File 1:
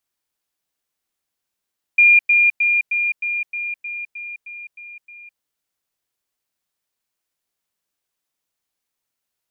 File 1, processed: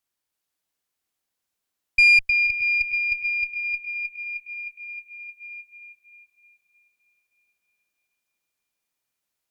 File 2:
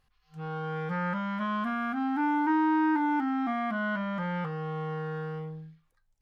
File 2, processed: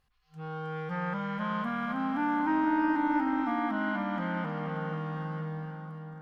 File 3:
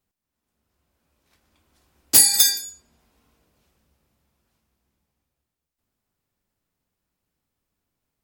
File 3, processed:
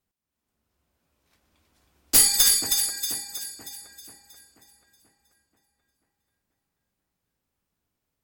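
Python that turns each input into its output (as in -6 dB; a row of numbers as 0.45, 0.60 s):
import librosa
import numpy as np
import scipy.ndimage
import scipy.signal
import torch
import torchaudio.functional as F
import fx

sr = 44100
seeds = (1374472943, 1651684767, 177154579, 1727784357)

y = fx.echo_split(x, sr, split_hz=1900.0, low_ms=485, high_ms=317, feedback_pct=52, wet_db=-5.5)
y = fx.tube_stage(y, sr, drive_db=7.0, bias=0.55)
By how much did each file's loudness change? -4.5, -1.5, -4.5 LU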